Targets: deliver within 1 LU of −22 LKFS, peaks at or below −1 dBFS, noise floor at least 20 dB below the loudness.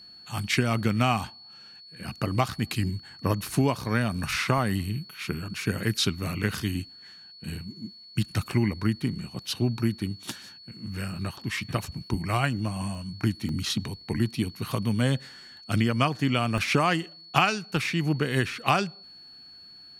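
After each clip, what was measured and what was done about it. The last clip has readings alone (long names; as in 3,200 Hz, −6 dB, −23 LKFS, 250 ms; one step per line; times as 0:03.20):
number of dropouts 5; longest dropout 2.3 ms; interfering tone 4,400 Hz; level of the tone −46 dBFS; integrated loudness −28.0 LKFS; sample peak −4.0 dBFS; target loudness −22.0 LKFS
→ repair the gap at 0:00.75/0:04.58/0:12.95/0:13.49/0:16.58, 2.3 ms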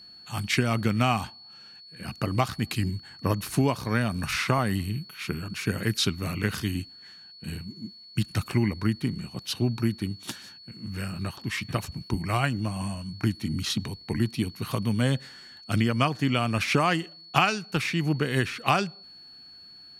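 number of dropouts 0; interfering tone 4,400 Hz; level of the tone −46 dBFS
→ notch filter 4,400 Hz, Q 30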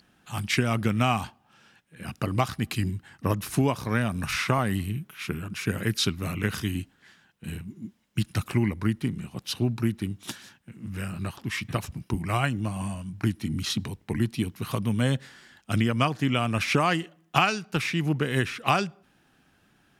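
interfering tone none found; integrated loudness −28.0 LKFS; sample peak −3.5 dBFS; target loudness −22.0 LKFS
→ level +6 dB
brickwall limiter −1 dBFS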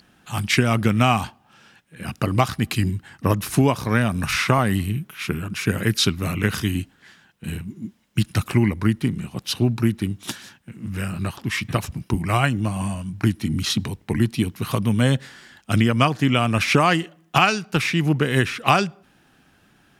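integrated loudness −22.0 LKFS; sample peak −1.0 dBFS; background noise floor −59 dBFS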